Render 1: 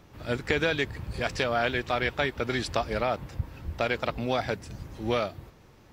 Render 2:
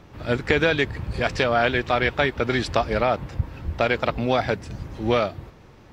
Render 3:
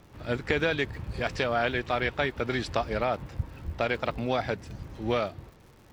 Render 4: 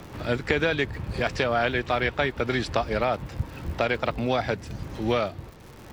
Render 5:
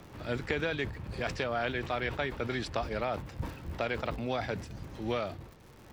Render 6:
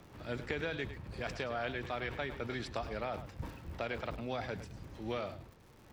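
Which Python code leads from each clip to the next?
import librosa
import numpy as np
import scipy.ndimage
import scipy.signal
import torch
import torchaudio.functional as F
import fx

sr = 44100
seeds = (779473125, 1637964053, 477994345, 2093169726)

y1 = fx.high_shelf(x, sr, hz=7000.0, db=-11.5)
y1 = F.gain(torch.from_numpy(y1), 6.5).numpy()
y2 = fx.dmg_crackle(y1, sr, seeds[0], per_s=140.0, level_db=-40.0)
y2 = F.gain(torch.from_numpy(y2), -6.5).numpy()
y3 = fx.band_squash(y2, sr, depth_pct=40)
y3 = F.gain(torch.from_numpy(y3), 3.0).numpy()
y4 = fx.sustainer(y3, sr, db_per_s=98.0)
y4 = F.gain(torch.from_numpy(y4), -8.5).numpy()
y5 = y4 + 10.0 ** (-12.5 / 20.0) * np.pad(y4, (int(104 * sr / 1000.0), 0))[:len(y4)]
y5 = F.gain(torch.from_numpy(y5), -5.5).numpy()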